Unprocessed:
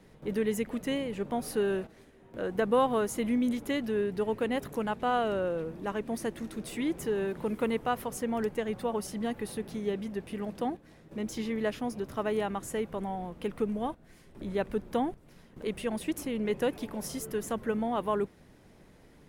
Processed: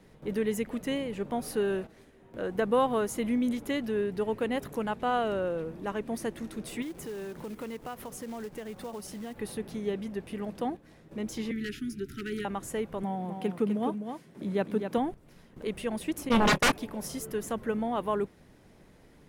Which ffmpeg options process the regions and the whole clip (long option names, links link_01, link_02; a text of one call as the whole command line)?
ffmpeg -i in.wav -filter_complex "[0:a]asettb=1/sr,asplit=3[link_01][link_02][link_03];[link_01]atrim=end=6.824[link_04];[link_02]atrim=start=6.82:end=9.37,asetpts=PTS-STARTPTS,afade=type=in:duration=0.004:curve=qsin,afade=type=out:start_time=2.546:duration=0.004:curve=qsin,bandreject=frequency=60:width_type=h:width=6,bandreject=frequency=120:width_type=h:width=6,acompressor=threshold=-39dB:ratio=2.5:attack=3.2:release=140:knee=1:detection=peak,acrusher=bits=4:mode=log:mix=0:aa=0.000001[link_05];[link_03]atrim=start=9.366[link_06];[link_04][link_05]acrossfade=duration=0.004:curve1=hsin:curve2=qsin[link_07];[link_07][link_06]acrossfade=duration=0.004:curve1=qsin:curve2=hsin,asettb=1/sr,asplit=3[link_08][link_09][link_10];[link_08]atrim=end=11.514[link_11];[link_09]atrim=start=11.51:end=12.45,asetpts=PTS-STARTPTS,afade=type=in:duration=0.004:curve=qsin,afade=type=out:start_time=0.936:duration=0.004:curve=qsin,aeval=exprs='0.0708*(abs(mod(val(0)/0.0708+3,4)-2)-1)':channel_layout=same,asuperstop=centerf=740:order=20:qfactor=0.81[link_12];[link_10]atrim=start=12.446[link_13];[link_11][link_12]acrossfade=duration=0.004:curve1=hsin:curve2=qsin[link_14];[link_14][link_13]acrossfade=duration=0.004:curve1=qsin:curve2=hsin,asettb=1/sr,asplit=3[link_15][link_16][link_17];[link_15]atrim=end=13.034[link_18];[link_16]atrim=start=13.03:end=14.98,asetpts=PTS-STARTPTS,afade=type=in:duration=0.004:curve=qsin,afade=type=out:start_time=1.946:duration=0.004:curve=qsin,highpass=frequency=170:width_type=q:width=1.6,aecho=1:1:254:0.447,atrim=end_sample=85995[link_19];[link_17]atrim=start=14.976[link_20];[link_18][link_19]acrossfade=duration=0.004:curve1=hsin:curve2=qsin[link_21];[link_21][link_20]acrossfade=duration=0.004:curve1=qsin:curve2=hsin,asettb=1/sr,asplit=3[link_22][link_23][link_24];[link_22]atrim=end=16.294[link_25];[link_23]atrim=start=16.29:end=16.72,asetpts=PTS-STARTPTS,afade=type=in:duration=0.004:curve=qsin,afade=type=out:start_time=0.426:duration=0.004:curve=qsin,agate=range=-35dB:threshold=-33dB:ratio=16:release=100:detection=peak,aeval=exprs='0.119*sin(PI/2*5.62*val(0)/0.119)':channel_layout=same,asplit=2[link_26][link_27];[link_27]adelay=26,volume=-11.5dB[link_28];[link_26][link_28]amix=inputs=2:normalize=0,atrim=end_sample=18963[link_29];[link_24]atrim=start=16.716[link_30];[link_25][link_29]acrossfade=duration=0.004:curve1=hsin:curve2=qsin[link_31];[link_31][link_30]acrossfade=duration=0.004:curve1=qsin:curve2=hsin" out.wav